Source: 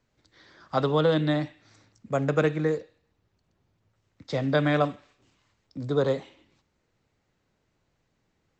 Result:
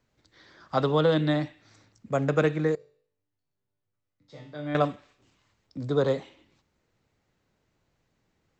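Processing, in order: 2.75–4.75 s: chord resonator G2 major, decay 0.55 s

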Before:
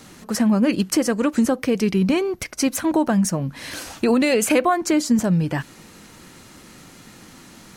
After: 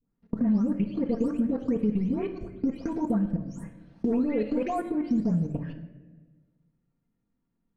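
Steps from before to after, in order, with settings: delay that grows with frequency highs late, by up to 334 ms; in parallel at -10 dB: saturation -21 dBFS, distortion -10 dB; on the sum: low-pass 2.7 kHz 6 dB/octave; level held to a coarse grid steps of 21 dB; tilt EQ -3.5 dB/octave; gate with hold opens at -22 dBFS; compression 5:1, threshold -22 dBFS, peak gain reduction 10 dB; on a send at -4 dB: reverberation RT60 1.3 s, pre-delay 4 ms; on the sum: trim -4.5 dB

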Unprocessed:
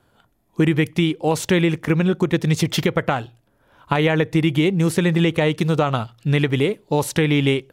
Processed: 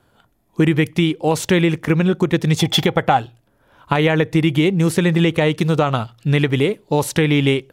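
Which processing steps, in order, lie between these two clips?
2.56–3.18 s: small resonant body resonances 790/3400 Hz, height 16 dB -> 12 dB; trim +2 dB

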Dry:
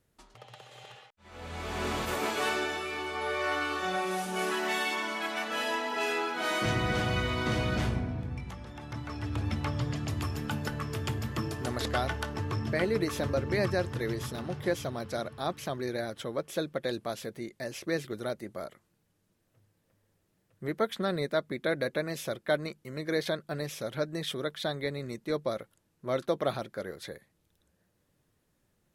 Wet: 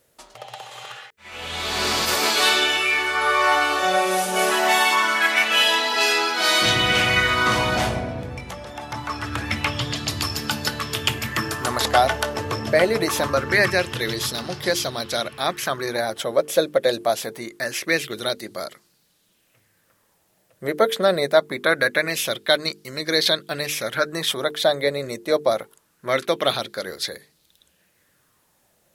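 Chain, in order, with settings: tilt EQ +2 dB/octave; hum notches 50/100/150/200/250/300/350/400/450 Hz; sweeping bell 0.24 Hz 540–4800 Hz +9 dB; trim +9 dB

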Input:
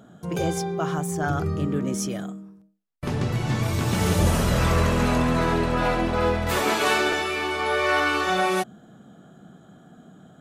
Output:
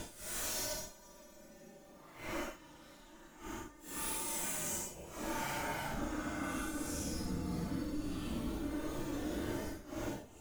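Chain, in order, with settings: FFT filter 100 Hz 0 dB, 260 Hz -12 dB, 6.3 kHz -2 dB; in parallel at -9.5 dB: decimation with a swept rate 25×, swing 160% 1.3 Hz; on the sum: treble shelf 5.9 kHz +8 dB; on a send: shuffle delay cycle 1423 ms, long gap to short 1.5:1, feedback 35%, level -7.5 dB; on the sum: Chebyshev shaper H 2 -28 dB, 3 -9 dB, 4 -12 dB, 8 -30 dB, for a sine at -7 dBFS; feedback comb 300 Hz, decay 0.41 s, harmonics all, mix 80%; level held to a coarse grid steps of 18 dB; Paulstretch 7.6×, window 0.05 s, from 0.52 s; trim +15.5 dB

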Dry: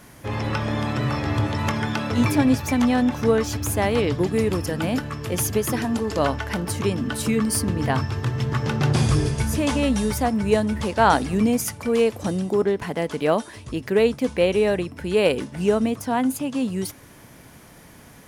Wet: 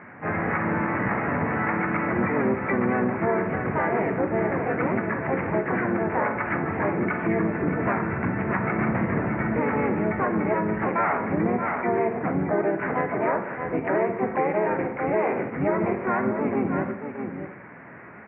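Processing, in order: octave divider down 1 oct, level -4 dB; saturation -14.5 dBFS, distortion -15 dB; harmony voices -3 st 0 dB, +7 st 0 dB, +12 st -10 dB; steep low-pass 2.2 kHz 72 dB/octave; tilt EQ +4 dB/octave; delay 624 ms -10 dB; reverberation RT60 0.65 s, pre-delay 33 ms, DRR 8.5 dB; compression 3:1, threshold -24 dBFS, peak gain reduction 9.5 dB; high-pass 120 Hz 12 dB/octave; bass shelf 390 Hz +6.5 dB

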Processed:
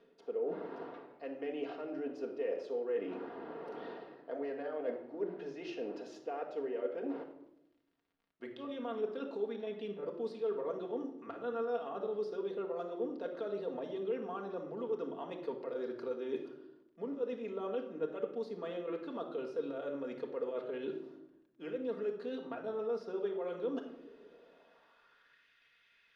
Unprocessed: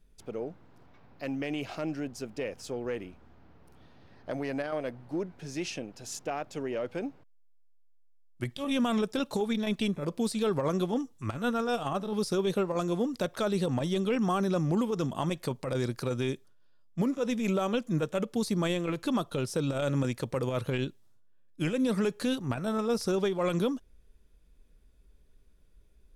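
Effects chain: bass shelf 120 Hz -9.5 dB; band-stop 2.3 kHz, Q 14; reverse; compression 20:1, threshold -54 dBFS, peak gain reduction 29 dB; reverse; high-pass sweep 400 Hz -> 2.1 kHz, 24.22–25.48 s; crackle 40 per s -71 dBFS; distance through air 290 m; reverberation RT60 0.85 s, pre-delay 4 ms, DRR 1 dB; trim +13 dB

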